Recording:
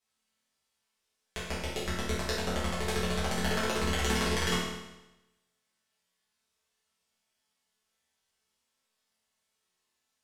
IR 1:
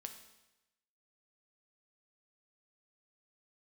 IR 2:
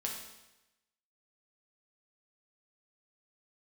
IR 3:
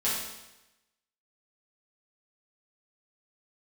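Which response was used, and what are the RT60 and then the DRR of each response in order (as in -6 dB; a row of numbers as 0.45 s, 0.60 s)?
3; 0.95 s, 0.95 s, 0.95 s; 5.5 dB, -1.5 dB, -9.5 dB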